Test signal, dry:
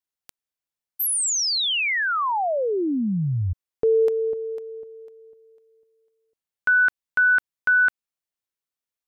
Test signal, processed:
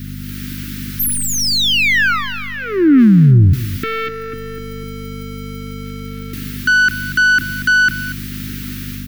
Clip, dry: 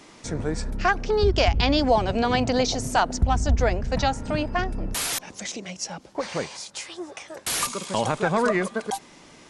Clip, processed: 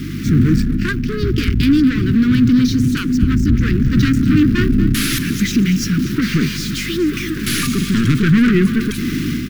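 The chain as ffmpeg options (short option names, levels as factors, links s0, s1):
-af "aeval=exprs='val(0)+0.5*0.0299*sgn(val(0))':c=same,aeval=exprs='0.447*(cos(1*acos(clip(val(0)/0.447,-1,1)))-cos(1*PI/2))+0.1*(cos(4*acos(clip(val(0)/0.447,-1,1)))-cos(4*PI/2))+0.2*(cos(6*acos(clip(val(0)/0.447,-1,1)))-cos(6*PI/2))+0.126*(cos(8*acos(clip(val(0)/0.447,-1,1)))-cos(8*PI/2))':c=same,dynaudnorm=f=190:g=3:m=2.66,aeval=exprs='val(0)+0.02*(sin(2*PI*50*n/s)+sin(2*PI*2*50*n/s)/2+sin(2*PI*3*50*n/s)/3+sin(2*PI*4*50*n/s)/4+sin(2*PI*5*50*n/s)/5)':c=same,equalizer=f=125:t=o:w=1:g=12,equalizer=f=250:t=o:w=1:g=11,equalizer=f=500:t=o:w=1:g=6,equalizer=f=1000:t=o:w=1:g=5,equalizer=f=8000:t=o:w=1:g=-9,asoftclip=type=tanh:threshold=0.501,asuperstop=centerf=700:order=8:qfactor=0.64,aecho=1:1:236:0.2"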